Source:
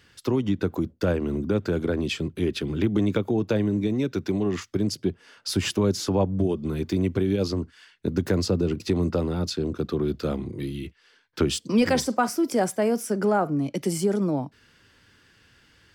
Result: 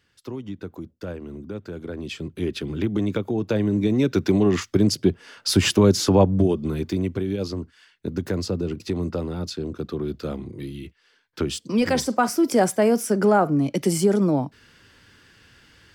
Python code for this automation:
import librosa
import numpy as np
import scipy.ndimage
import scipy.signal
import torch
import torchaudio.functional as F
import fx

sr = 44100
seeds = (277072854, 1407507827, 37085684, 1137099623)

y = fx.gain(x, sr, db=fx.line((1.76, -9.5), (2.44, -1.0), (3.34, -1.0), (4.15, 6.5), (6.23, 6.5), (7.22, -2.5), (11.53, -2.5), (12.49, 4.5)))